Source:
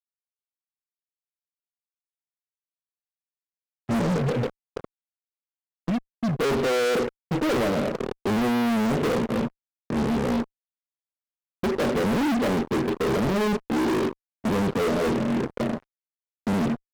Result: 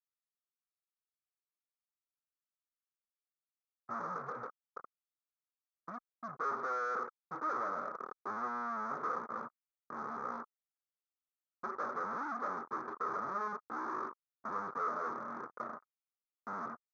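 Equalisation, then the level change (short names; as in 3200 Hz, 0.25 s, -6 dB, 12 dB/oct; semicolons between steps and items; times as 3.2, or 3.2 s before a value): double band-pass 2800 Hz, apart 2.3 oct; air absorption 300 m; high shelf 4000 Hz -6.5 dB; +4.5 dB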